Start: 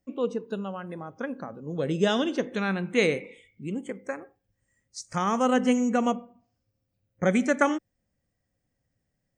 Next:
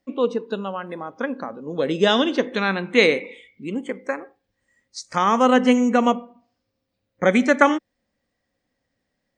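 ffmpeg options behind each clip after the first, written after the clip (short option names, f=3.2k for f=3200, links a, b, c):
-af "equalizer=f=125:t=o:w=1:g=-5,equalizer=f=250:t=o:w=1:g=8,equalizer=f=500:t=o:w=1:g=6,equalizer=f=1k:t=o:w=1:g=9,equalizer=f=2k:t=o:w=1:g=7,equalizer=f=4k:t=o:w=1:g=12,volume=-2.5dB"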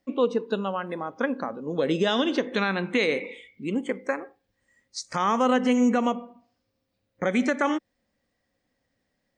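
-af "alimiter=limit=-13.5dB:level=0:latency=1:release=148"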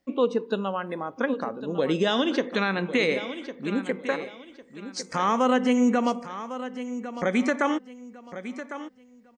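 -af "aecho=1:1:1103|2206|3309:0.251|0.0728|0.0211"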